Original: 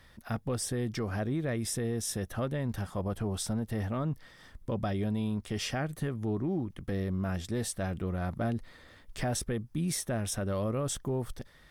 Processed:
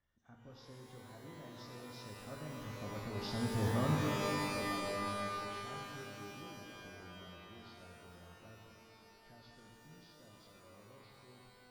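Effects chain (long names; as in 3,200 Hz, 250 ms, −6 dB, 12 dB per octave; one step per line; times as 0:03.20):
hearing-aid frequency compression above 1,500 Hz 1.5 to 1
source passing by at 0:03.68, 16 m/s, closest 3.9 metres
Bessel low-pass filter 6,500 Hz
notch filter 2,600 Hz, Q 6.3
reverb with rising layers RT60 2.5 s, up +12 semitones, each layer −2 dB, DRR 0.5 dB
level −2.5 dB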